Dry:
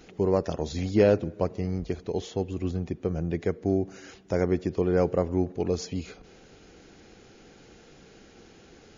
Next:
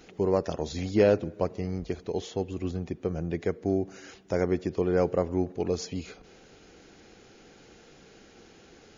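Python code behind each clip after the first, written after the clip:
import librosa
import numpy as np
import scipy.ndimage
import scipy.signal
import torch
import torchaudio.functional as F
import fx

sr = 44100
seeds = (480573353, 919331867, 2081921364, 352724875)

y = fx.low_shelf(x, sr, hz=240.0, db=-4.0)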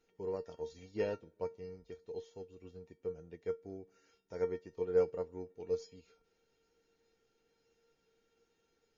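y = fx.comb_fb(x, sr, f0_hz=460.0, decay_s=0.22, harmonics='all', damping=0.0, mix_pct=90)
y = fx.upward_expand(y, sr, threshold_db=-54.0, expansion=1.5)
y = y * 10.0 ** (3.5 / 20.0)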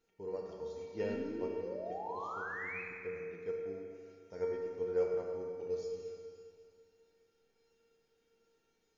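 y = fx.spec_paint(x, sr, seeds[0], shape='rise', start_s=1.03, length_s=1.79, low_hz=210.0, high_hz=2600.0, level_db=-41.0)
y = fx.rev_schroeder(y, sr, rt60_s=2.3, comb_ms=27, drr_db=0.5)
y = y * 10.0 ** (-3.5 / 20.0)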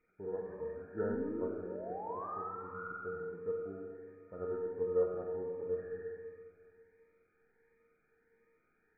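y = fx.freq_compress(x, sr, knee_hz=1200.0, ratio=4.0)
y = fx.notch_cascade(y, sr, direction='rising', hz=1.4)
y = y * 10.0 ** (2.5 / 20.0)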